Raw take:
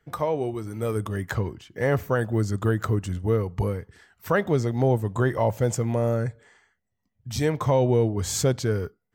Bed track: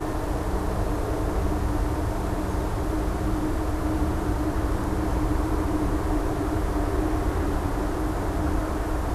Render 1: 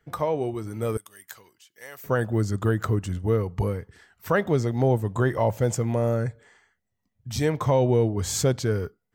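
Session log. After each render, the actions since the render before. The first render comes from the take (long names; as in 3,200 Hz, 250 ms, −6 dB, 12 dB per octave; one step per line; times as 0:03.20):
0:00.97–0:02.04: first difference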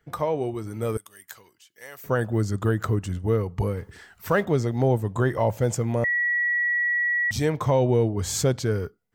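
0:03.77–0:04.45: mu-law and A-law mismatch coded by mu
0:06.04–0:07.31: beep over 1,930 Hz −20.5 dBFS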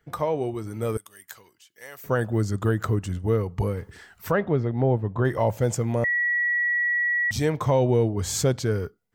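0:04.31–0:05.25: high-frequency loss of the air 350 metres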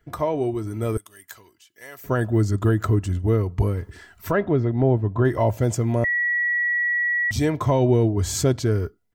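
low-shelf EQ 280 Hz +6.5 dB
comb filter 3 ms, depth 42%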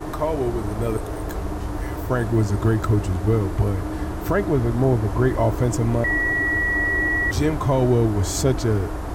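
mix in bed track −2.5 dB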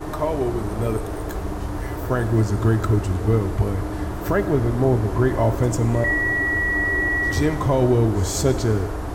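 echo ahead of the sound 97 ms −17.5 dB
reverb whose tail is shaped and stops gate 470 ms falling, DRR 11.5 dB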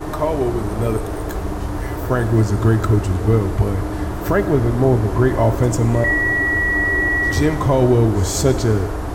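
level +3.5 dB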